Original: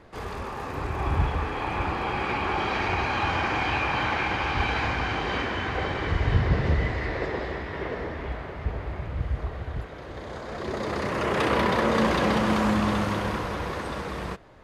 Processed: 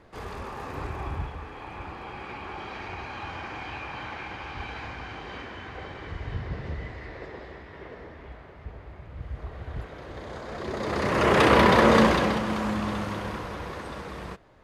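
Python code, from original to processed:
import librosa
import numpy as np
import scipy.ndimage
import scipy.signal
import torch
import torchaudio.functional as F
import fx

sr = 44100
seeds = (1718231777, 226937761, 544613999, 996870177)

y = fx.gain(x, sr, db=fx.line((0.84, -3.0), (1.35, -11.0), (9.04, -11.0), (9.86, -1.5), (10.75, -1.5), (11.28, 5.5), (11.96, 5.5), (12.44, -5.0)))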